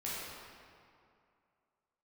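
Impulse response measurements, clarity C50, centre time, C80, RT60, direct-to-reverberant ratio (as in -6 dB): -3.5 dB, 149 ms, -1.0 dB, 2.4 s, -8.5 dB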